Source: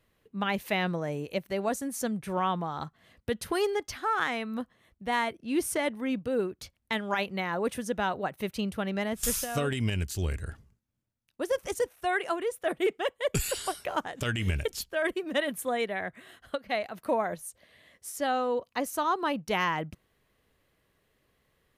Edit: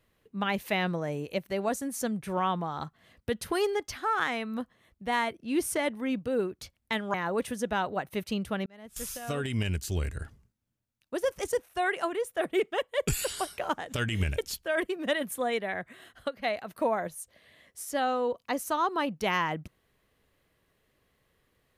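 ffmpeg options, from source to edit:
ffmpeg -i in.wav -filter_complex "[0:a]asplit=3[link_01][link_02][link_03];[link_01]atrim=end=7.142[link_04];[link_02]atrim=start=7.408:end=8.93,asetpts=PTS-STARTPTS,afade=type=out:start_time=1.518:duration=0.004:curve=hsin[link_05];[link_03]atrim=start=8.93,asetpts=PTS-STARTPTS,afade=type=in:duration=1.01[link_06];[link_05][link_06]concat=n=2:v=0:a=1[link_07];[link_04][link_07]acrossfade=duration=0.004:curve1=hsin:curve2=hsin" out.wav

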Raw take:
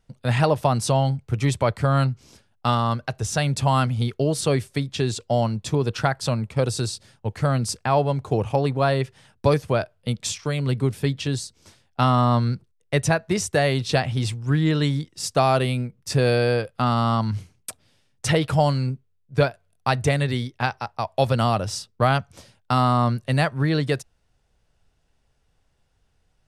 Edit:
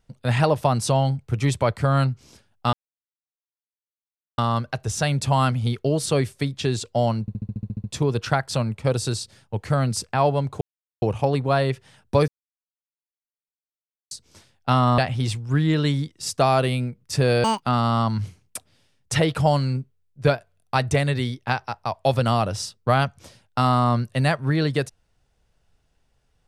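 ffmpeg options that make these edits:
ffmpeg -i in.wav -filter_complex "[0:a]asplit=17[link_01][link_02][link_03][link_04][link_05][link_06][link_07][link_08][link_09][link_10][link_11][link_12][link_13][link_14][link_15][link_16][link_17];[link_01]atrim=end=2.73,asetpts=PTS-STARTPTS,afade=type=out:start_time=2.726:duration=0.004:curve=hsin,apad=pad_dur=1.65[link_18];[link_02]atrim=start=2.73:end=5.632,asetpts=PTS-STARTPTS,afade=type=in:duration=0.004:curve=hsin[link_19];[link_03]atrim=start=5.558:end=5.632[link_20];[link_04]atrim=start=5.558:end=5.632[link_21];[link_05]atrim=start=5.558:end=5.632[link_22];[link_06]atrim=start=5.558:end=5.632[link_23];[link_07]atrim=start=5.558:end=5.632[link_24];[link_08]atrim=start=5.558:end=5.632[link_25];[link_09]atrim=start=5.558:end=5.632[link_26];[link_10]atrim=start=5.558:end=5.632[link_27];[link_11]atrim=start=5.558:end=8.33,asetpts=PTS-STARTPTS,afade=type=out:start_time=2.768:duration=0.004:curve=hsin,apad=pad_dur=0.41[link_28];[link_12]atrim=start=8.33:end=9.59,asetpts=PTS-STARTPTS,afade=type=in:duration=0.004:curve=hsin,afade=type=out:start_time=1.256:duration=0.004:curve=hsin[link_29];[link_13]atrim=start=9.59:end=11.42,asetpts=PTS-STARTPTS,volume=0[link_30];[link_14]atrim=start=11.42:end=12.292,asetpts=PTS-STARTPTS,afade=type=in:duration=0.004:curve=hsin[link_31];[link_15]atrim=start=13.948:end=16.414[link_32];[link_16]atrim=start=16.41:end=16.76,asetpts=PTS-STARTPTS,asetrate=81585,aresample=44100,atrim=end_sample=8343,asetpts=PTS-STARTPTS[link_33];[link_17]atrim=start=16.756[link_34];[link_18][link_19]concat=n=2:v=0:a=1[link_35];[link_35][link_20]acrossfade=duration=0.004:curve1=hsin:curve2=hsin[link_36];[link_36][link_21]acrossfade=duration=0.004:curve1=hsin:curve2=hsin[link_37];[link_37][link_22]acrossfade=duration=0.004:curve1=hsin:curve2=hsin[link_38];[link_38][link_23]acrossfade=duration=0.004:curve1=hsin:curve2=hsin[link_39];[link_39][link_24]acrossfade=duration=0.004:curve1=hsin:curve2=hsin[link_40];[link_40][link_25]acrossfade=duration=0.004:curve1=hsin:curve2=hsin[link_41];[link_41][link_26]acrossfade=duration=0.004:curve1=hsin:curve2=hsin[link_42];[link_42][link_27]acrossfade=duration=0.004:curve1=hsin:curve2=hsin[link_43];[link_28][link_29][link_30][link_31]concat=n=4:v=0:a=1[link_44];[link_43][link_44]acrossfade=duration=0.004:curve1=hsin:curve2=hsin[link_45];[link_45][link_32]acrossfade=duration=0.004:curve1=hsin:curve2=hsin[link_46];[link_46][link_33]acrossfade=duration=0.004:curve1=hsin:curve2=hsin[link_47];[link_47][link_34]acrossfade=duration=0.004:curve1=hsin:curve2=hsin" out.wav

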